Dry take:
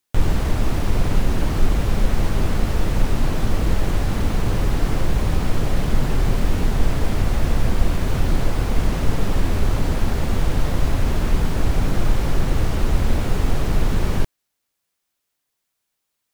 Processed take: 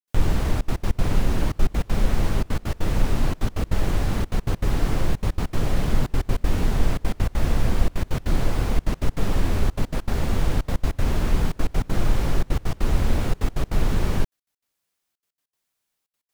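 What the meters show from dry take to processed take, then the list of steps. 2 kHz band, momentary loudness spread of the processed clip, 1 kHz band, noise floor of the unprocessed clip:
−3.0 dB, 3 LU, −3.0 dB, −77 dBFS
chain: gate pattern ".xxxxxxx.x.x" 198 BPM −24 dB
level −2 dB

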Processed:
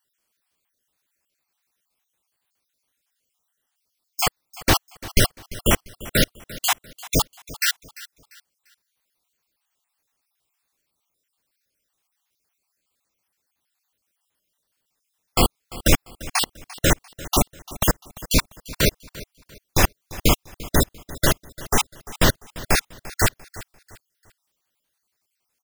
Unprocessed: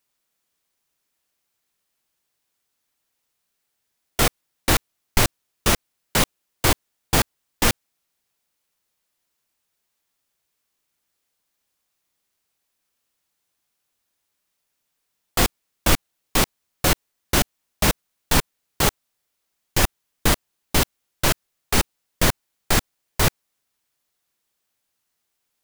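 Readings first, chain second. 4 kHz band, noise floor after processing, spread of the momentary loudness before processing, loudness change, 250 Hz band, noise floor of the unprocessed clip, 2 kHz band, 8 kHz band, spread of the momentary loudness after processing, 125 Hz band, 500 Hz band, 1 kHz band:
0.0 dB, −78 dBFS, 5 LU, 0.0 dB, +1.0 dB, −77 dBFS, −0.5 dB, −0.5 dB, 13 LU, +1.0 dB, +1.0 dB, −1.0 dB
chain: time-frequency cells dropped at random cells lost 48%
on a send: repeating echo 345 ms, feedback 33%, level −18.5 dB
on the sum: level +2.5 dB

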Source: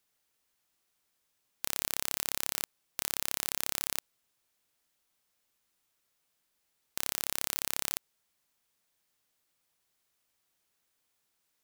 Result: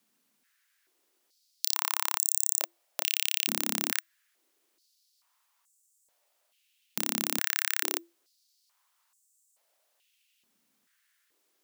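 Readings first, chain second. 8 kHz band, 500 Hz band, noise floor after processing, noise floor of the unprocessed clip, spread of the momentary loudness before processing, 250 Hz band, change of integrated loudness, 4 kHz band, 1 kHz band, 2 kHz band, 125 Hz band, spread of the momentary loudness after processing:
+6.0 dB, +3.5 dB, −74 dBFS, −78 dBFS, 7 LU, +9.0 dB, +5.0 dB, +6.0 dB, +6.0 dB, +7.5 dB, +0.5 dB, 8 LU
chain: frequency shifter −340 Hz
high-pass on a step sequencer 2.3 Hz 220–7,600 Hz
level +3.5 dB

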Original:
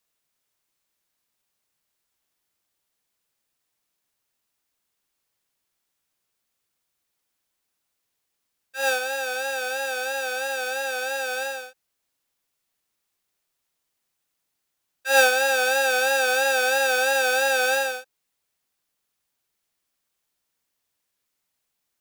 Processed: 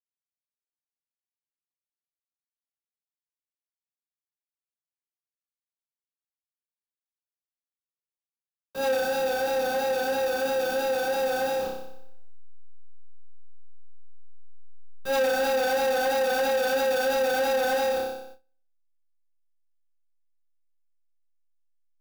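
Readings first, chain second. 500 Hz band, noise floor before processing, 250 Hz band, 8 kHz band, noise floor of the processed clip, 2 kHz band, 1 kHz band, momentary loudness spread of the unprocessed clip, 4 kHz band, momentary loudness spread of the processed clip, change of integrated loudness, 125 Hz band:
+1.5 dB, −79 dBFS, +10.5 dB, −9.5 dB, below −85 dBFS, −9.0 dB, −1.5 dB, 10 LU, −6.5 dB, 6 LU, −3.5 dB, can't be measured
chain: hold until the input has moved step −33 dBFS
on a send: flutter between parallel walls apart 5.2 metres, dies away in 0.78 s
on the sum: noise gate with hold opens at −32 dBFS
octave-band graphic EQ 250/500/2,000/8,000 Hz +11/+5/−12/−9 dB
downward compressor 2 to 1, threshold −19 dBFS, peak gain reduction 7 dB
soft clipping −20.5 dBFS, distortion −11 dB

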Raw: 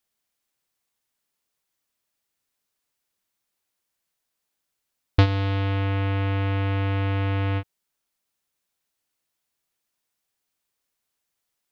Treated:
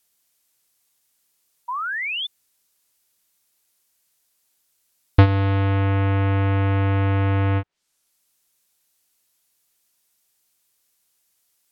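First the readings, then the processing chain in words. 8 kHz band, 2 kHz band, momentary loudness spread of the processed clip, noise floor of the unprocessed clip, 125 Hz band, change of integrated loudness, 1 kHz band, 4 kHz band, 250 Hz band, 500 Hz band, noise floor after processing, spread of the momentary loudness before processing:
can't be measured, +6.0 dB, 10 LU, −81 dBFS, +4.5 dB, +3.5 dB, +6.0 dB, +5.0 dB, +4.5 dB, +4.5 dB, −70 dBFS, 5 LU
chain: treble cut that deepens with the level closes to 1,800 Hz, closed at −27.5 dBFS
high-shelf EQ 4,300 Hz +11.5 dB
sound drawn into the spectrogram rise, 0:01.68–0:02.27, 940–3,600 Hz −31 dBFS
level +4.5 dB

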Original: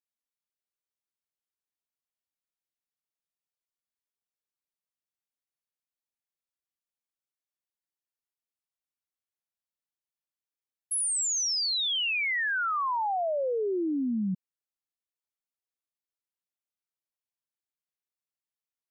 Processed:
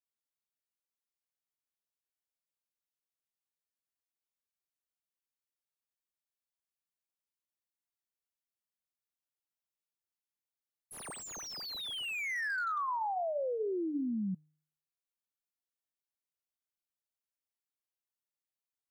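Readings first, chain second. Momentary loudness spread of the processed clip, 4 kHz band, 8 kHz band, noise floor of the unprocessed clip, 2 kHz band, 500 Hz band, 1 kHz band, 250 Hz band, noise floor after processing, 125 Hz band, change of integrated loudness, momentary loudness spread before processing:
10 LU, −12.5 dB, −17.5 dB, below −85 dBFS, −7.0 dB, −5.5 dB, −5.5 dB, −5.5 dB, below −85 dBFS, −5.5 dB, −8.5 dB, 5 LU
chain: high-shelf EQ 8,700 Hz +3.5 dB
hum removal 152.9 Hz, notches 16
slew-rate limiting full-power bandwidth 70 Hz
level −5.5 dB

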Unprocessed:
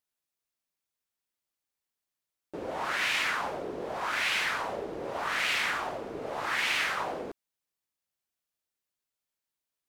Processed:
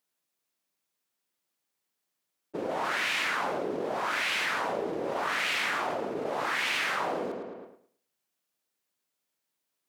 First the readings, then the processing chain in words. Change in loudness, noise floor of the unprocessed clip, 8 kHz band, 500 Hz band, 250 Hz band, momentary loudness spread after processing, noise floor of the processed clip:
+0.5 dB, below −85 dBFS, −0.5 dB, +4.0 dB, +4.5 dB, 9 LU, −83 dBFS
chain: high-pass filter 170 Hz 12 dB per octave
downward expander −32 dBFS
low-shelf EQ 450 Hz +4.5 dB
on a send: feedback echo with a low-pass in the loop 109 ms, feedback 25%, low-pass 4,700 Hz, level −13.5 dB
on the sum: envelope flattener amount 70%
level −2 dB

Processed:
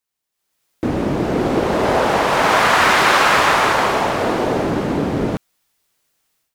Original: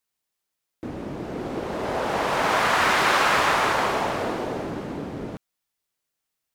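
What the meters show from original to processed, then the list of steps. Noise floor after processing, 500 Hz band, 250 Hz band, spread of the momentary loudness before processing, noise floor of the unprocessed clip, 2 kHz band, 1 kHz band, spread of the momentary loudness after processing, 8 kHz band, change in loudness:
−80 dBFS, +9.0 dB, +11.0 dB, 17 LU, −82 dBFS, +7.0 dB, +7.0 dB, 9 LU, +7.0 dB, +7.0 dB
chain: automatic gain control gain up to 15 dB
level −1 dB

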